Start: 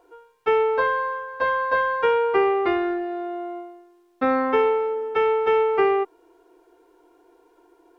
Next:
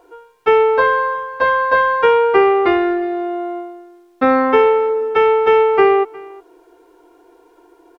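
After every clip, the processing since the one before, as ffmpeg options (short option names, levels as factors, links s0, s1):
-af "aecho=1:1:361:0.075,volume=2.37"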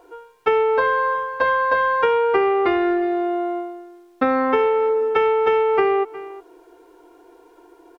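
-af "acompressor=threshold=0.178:ratio=6"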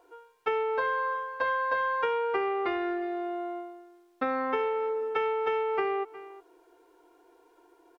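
-af "lowshelf=f=390:g=-6.5,volume=0.376"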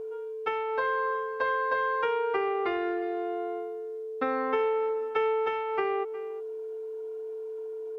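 -af "aeval=exprs='val(0)+0.02*sin(2*PI*440*n/s)':c=same"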